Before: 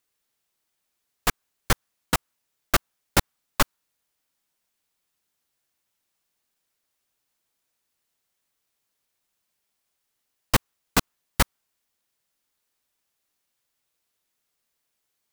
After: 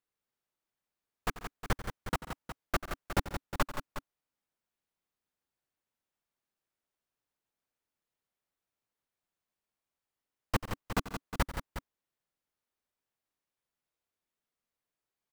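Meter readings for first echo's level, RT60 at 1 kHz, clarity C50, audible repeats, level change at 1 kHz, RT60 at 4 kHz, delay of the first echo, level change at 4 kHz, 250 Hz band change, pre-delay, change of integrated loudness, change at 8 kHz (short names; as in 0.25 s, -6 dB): -15.0 dB, none, none, 4, -8.0 dB, none, 90 ms, -14.0 dB, -7.5 dB, none, -10.5 dB, -16.5 dB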